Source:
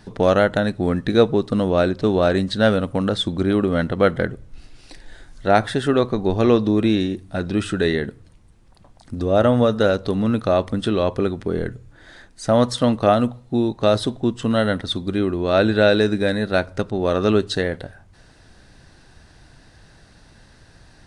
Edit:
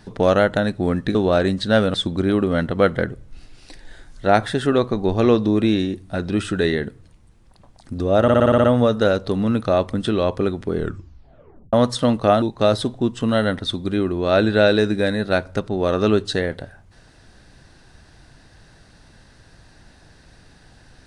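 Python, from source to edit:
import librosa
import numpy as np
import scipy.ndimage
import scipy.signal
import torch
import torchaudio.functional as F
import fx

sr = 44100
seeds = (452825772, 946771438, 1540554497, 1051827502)

y = fx.edit(x, sr, fx.cut(start_s=1.15, length_s=0.9),
    fx.cut(start_s=2.84, length_s=0.31),
    fx.stutter(start_s=9.43, slice_s=0.06, count=8),
    fx.tape_stop(start_s=11.56, length_s=0.96),
    fx.cut(start_s=13.21, length_s=0.43), tone=tone)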